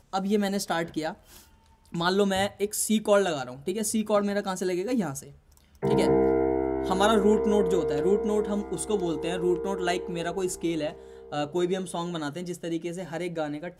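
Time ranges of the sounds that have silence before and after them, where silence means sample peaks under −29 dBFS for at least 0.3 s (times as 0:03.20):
0:01.94–0:05.19
0:05.83–0:10.90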